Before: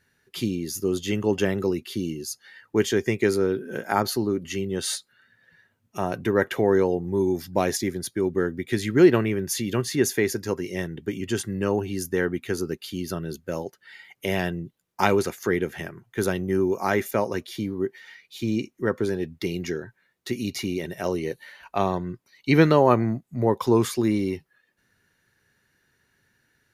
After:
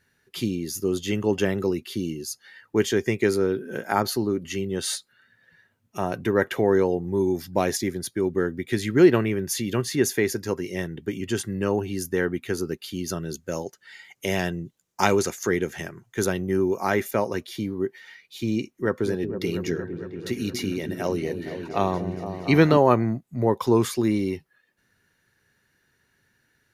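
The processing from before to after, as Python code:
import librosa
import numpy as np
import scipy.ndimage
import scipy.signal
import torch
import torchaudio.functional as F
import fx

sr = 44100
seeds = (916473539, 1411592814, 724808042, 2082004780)

y = fx.peak_eq(x, sr, hz=6700.0, db=9.0, octaves=0.73, at=(13.06, 16.25))
y = fx.echo_opening(y, sr, ms=231, hz=400, octaves=1, feedback_pct=70, wet_db=-6, at=(18.61, 22.77))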